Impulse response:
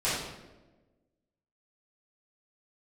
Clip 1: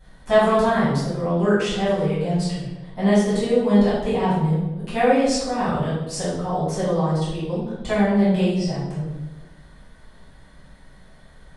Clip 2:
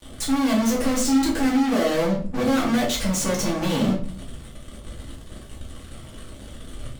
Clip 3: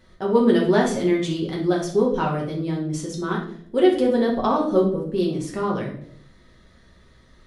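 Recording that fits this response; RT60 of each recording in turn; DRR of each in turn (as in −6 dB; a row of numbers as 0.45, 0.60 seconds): 1; 1.2, 0.50, 0.65 seconds; −12.5, −4.0, −3.0 decibels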